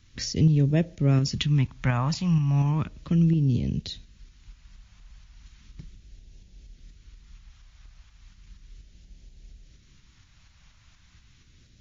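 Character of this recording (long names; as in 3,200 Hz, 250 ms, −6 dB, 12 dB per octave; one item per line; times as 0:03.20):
phaser sweep stages 2, 0.35 Hz, lowest notch 380–1,100 Hz
tremolo saw up 4.2 Hz, depth 40%
MP3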